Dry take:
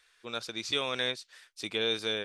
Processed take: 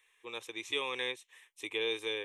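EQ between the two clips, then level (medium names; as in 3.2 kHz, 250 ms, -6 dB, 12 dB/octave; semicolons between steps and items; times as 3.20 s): bass shelf 180 Hz -11 dB; static phaser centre 960 Hz, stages 8; 0.0 dB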